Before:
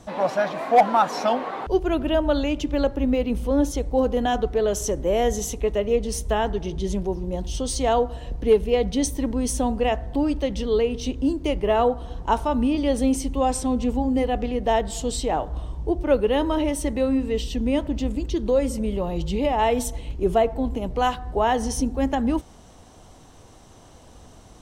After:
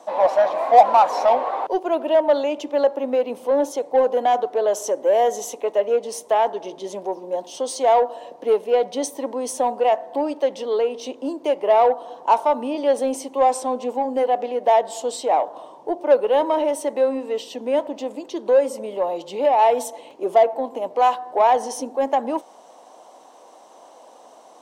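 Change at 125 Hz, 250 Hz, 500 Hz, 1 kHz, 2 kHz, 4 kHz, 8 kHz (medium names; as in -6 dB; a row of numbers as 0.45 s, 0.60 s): under -20 dB, -7.0 dB, +4.0 dB, +6.0 dB, -1.0 dB, -2.5 dB, -2.0 dB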